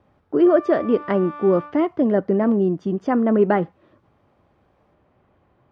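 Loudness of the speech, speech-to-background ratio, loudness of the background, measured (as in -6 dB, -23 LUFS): -19.5 LUFS, 17.5 dB, -37.0 LUFS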